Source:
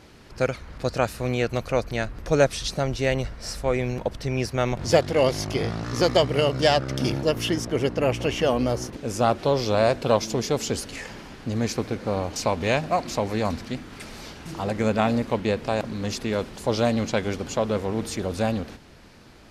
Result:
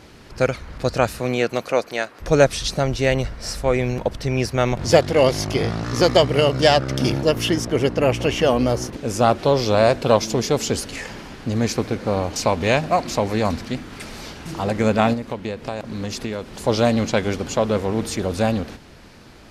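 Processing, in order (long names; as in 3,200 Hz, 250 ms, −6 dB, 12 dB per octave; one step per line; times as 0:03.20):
0:01.19–0:02.20: high-pass filter 130 Hz → 490 Hz 12 dB per octave
0:15.13–0:16.66: downward compressor 10 to 1, threshold −28 dBFS, peak gain reduction 10.5 dB
level +4.5 dB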